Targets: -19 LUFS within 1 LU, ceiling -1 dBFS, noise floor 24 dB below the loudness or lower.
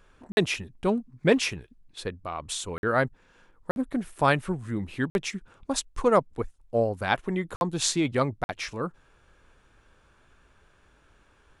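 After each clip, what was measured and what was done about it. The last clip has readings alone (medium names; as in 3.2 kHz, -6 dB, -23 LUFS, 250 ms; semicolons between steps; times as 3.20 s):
dropouts 6; longest dropout 51 ms; loudness -28.0 LUFS; peak level -6.5 dBFS; loudness target -19.0 LUFS
-> interpolate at 0.32/2.78/3.71/5.10/7.56/8.44 s, 51 ms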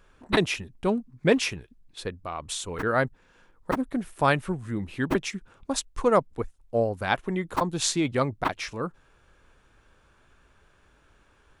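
dropouts 0; loudness -27.5 LUFS; peak level -6.5 dBFS; loudness target -19.0 LUFS
-> trim +8.5 dB; peak limiter -1 dBFS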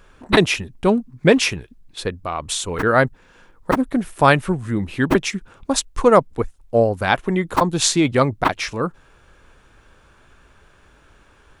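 loudness -19.5 LUFS; peak level -1.0 dBFS; noise floor -53 dBFS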